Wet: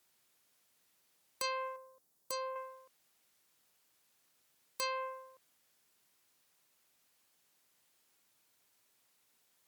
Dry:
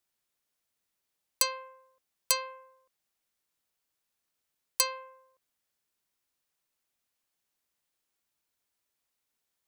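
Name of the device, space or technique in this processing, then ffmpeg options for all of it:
podcast mastering chain: -filter_complex "[0:a]asettb=1/sr,asplit=3[a][b][c];[a]atrim=end=1.764[d];[b]atrim=start=1.76:end=2.56,asetpts=PTS-STARTPTS,afade=t=in:d=0.004:c=qsin,afade=t=out:st=0.796:d=0.004:c=qsin,equalizer=f=2.4k:t=o:w=2:g=-12.5[e];[c]atrim=start=2.556[f];[d][e]acrossfade=d=0.004:c1=hsin:c2=qsin[g];[g][f]acrossfade=d=0.004:c1=qsin:c2=hsin,highpass=100,deesser=0.65,acompressor=threshold=-38dB:ratio=2,alimiter=level_in=7.5dB:limit=-24dB:level=0:latency=1:release=245,volume=-7.5dB,volume=10dB" -ar 44100 -c:a libmp3lame -b:a 96k

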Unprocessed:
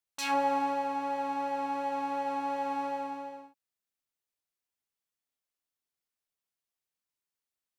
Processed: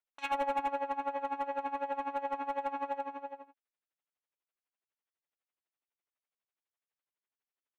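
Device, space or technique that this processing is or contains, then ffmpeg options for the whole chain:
helicopter radio: -af "highpass=360,lowpass=2.9k,aeval=exprs='val(0)*pow(10,-18*(0.5-0.5*cos(2*PI*12*n/s))/20)':c=same,asoftclip=type=hard:threshold=-30.5dB,equalizer=f=4.8k:t=o:w=0.38:g=-11,volume=4dB"

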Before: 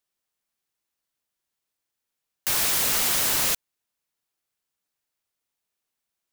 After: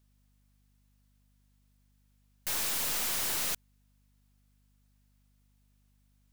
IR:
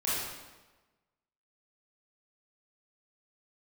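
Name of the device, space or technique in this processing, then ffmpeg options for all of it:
valve amplifier with mains hum: -af "aeval=exprs='(tanh(63.1*val(0)+0.3)-tanh(0.3))/63.1':c=same,aeval=exprs='val(0)+0.000251*(sin(2*PI*50*n/s)+sin(2*PI*2*50*n/s)/2+sin(2*PI*3*50*n/s)/3+sin(2*PI*4*50*n/s)/4+sin(2*PI*5*50*n/s)/5)':c=same,volume=5dB"

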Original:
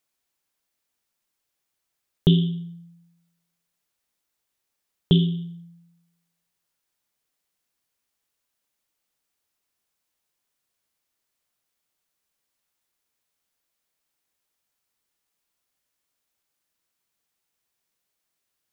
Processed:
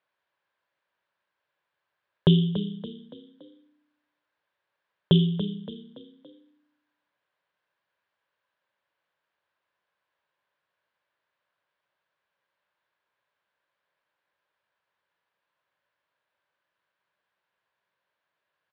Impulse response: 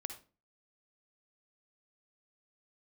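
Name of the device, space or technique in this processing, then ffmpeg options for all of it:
frequency-shifting delay pedal into a guitar cabinet: -filter_complex "[0:a]asplit=5[a][b][c][d][e];[b]adelay=284,afreqshift=32,volume=-11.5dB[f];[c]adelay=568,afreqshift=64,volume=-18.6dB[g];[d]adelay=852,afreqshift=96,volume=-25.8dB[h];[e]adelay=1136,afreqshift=128,volume=-32.9dB[i];[a][f][g][h][i]amix=inputs=5:normalize=0,highpass=100,equalizer=f=250:t=q:w=4:g=-9,equalizer=f=570:t=q:w=4:g=9,equalizer=f=1k:t=q:w=4:g=9,equalizer=f=1.6k:t=q:w=4:g=10,lowpass=f=3.6k:w=0.5412,lowpass=f=3.6k:w=1.3066"

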